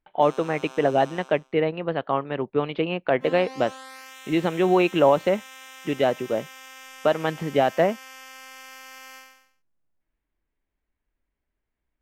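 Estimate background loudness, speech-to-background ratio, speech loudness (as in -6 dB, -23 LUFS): -42.5 LUFS, 18.5 dB, -24.0 LUFS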